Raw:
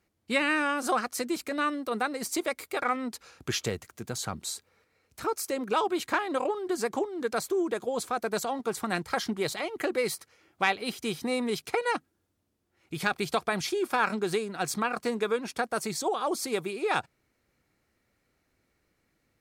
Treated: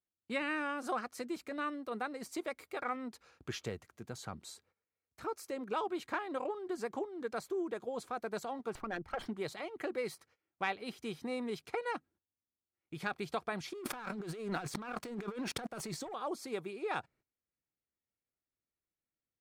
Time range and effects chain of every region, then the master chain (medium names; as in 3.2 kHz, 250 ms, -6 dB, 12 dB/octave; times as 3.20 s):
8.75–9.26 s: resonances exaggerated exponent 2 + sliding maximum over 5 samples
13.73–16.14 s: waveshaping leveller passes 3 + compressor with a negative ratio -32 dBFS
whole clip: gate -55 dBFS, range -17 dB; treble shelf 4.2 kHz -9.5 dB; trim -8.5 dB